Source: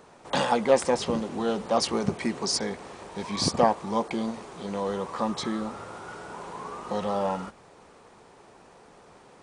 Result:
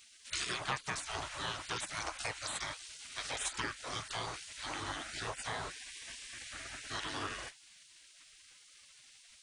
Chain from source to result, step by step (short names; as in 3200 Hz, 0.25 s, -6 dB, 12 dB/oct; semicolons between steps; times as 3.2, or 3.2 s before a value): notches 60/120/180/240/300/360/420/480 Hz; spectral gate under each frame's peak -20 dB weak; compressor 2.5:1, threshold -43 dBFS, peak gain reduction 10.5 dB; gain +6.5 dB